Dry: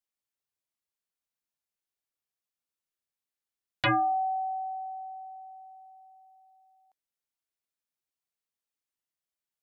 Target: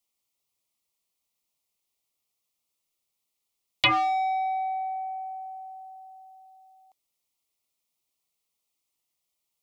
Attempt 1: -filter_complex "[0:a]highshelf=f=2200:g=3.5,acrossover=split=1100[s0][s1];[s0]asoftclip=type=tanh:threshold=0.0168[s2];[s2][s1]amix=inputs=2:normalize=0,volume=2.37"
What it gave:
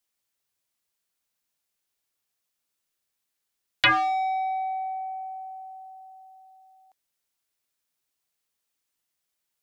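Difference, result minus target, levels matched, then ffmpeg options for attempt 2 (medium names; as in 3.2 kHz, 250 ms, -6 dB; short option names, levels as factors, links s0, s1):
2 kHz band +3.0 dB
-filter_complex "[0:a]asuperstop=centerf=1600:order=4:qfactor=2.3,highshelf=f=2200:g=3.5,acrossover=split=1100[s0][s1];[s0]asoftclip=type=tanh:threshold=0.0168[s2];[s2][s1]amix=inputs=2:normalize=0,volume=2.37"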